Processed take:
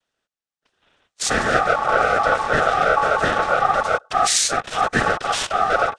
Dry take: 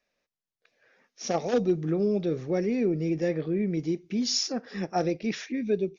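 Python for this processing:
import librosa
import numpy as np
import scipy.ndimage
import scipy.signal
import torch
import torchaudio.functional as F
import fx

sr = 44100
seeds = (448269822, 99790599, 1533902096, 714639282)

p1 = fx.fuzz(x, sr, gain_db=53.0, gate_db=-44.0)
p2 = x + (p1 * librosa.db_to_amplitude(-9.5))
p3 = fx.noise_vocoder(p2, sr, seeds[0], bands=8)
p4 = p3 * np.sin(2.0 * np.pi * 990.0 * np.arange(len(p3)) / sr)
y = p4 * librosa.db_to_amplitude(4.5)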